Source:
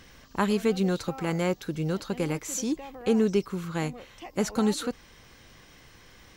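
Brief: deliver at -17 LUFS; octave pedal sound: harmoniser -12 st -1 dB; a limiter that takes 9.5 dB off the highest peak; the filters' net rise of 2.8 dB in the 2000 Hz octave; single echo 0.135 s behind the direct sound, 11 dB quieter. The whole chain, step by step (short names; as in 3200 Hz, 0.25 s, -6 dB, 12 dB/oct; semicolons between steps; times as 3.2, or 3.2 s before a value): bell 2000 Hz +3.5 dB; limiter -20 dBFS; echo 0.135 s -11 dB; harmoniser -12 st -1 dB; gain +12.5 dB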